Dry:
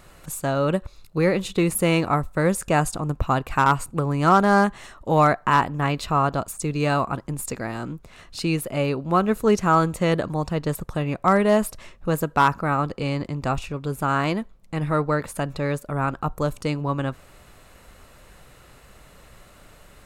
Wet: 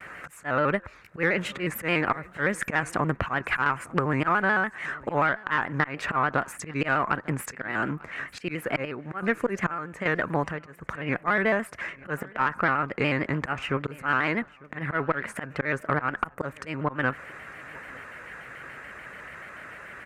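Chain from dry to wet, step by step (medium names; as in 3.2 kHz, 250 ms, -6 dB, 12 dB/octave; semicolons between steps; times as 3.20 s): frequency weighting D; gate with hold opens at -39 dBFS; high-pass 40 Hz 24 dB/octave; resonant high shelf 2.6 kHz -14 dB, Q 3; slow attack 257 ms; compression 20:1, threshold -24 dBFS, peak gain reduction 17 dB; 8.39–10.83 s: square tremolo 1.2 Hz, depth 65%, duty 55%; valve stage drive 14 dB, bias 0.4; feedback delay 898 ms, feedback 37%, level -23 dB; vibrato with a chosen wave square 6.9 Hz, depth 100 cents; trim +5.5 dB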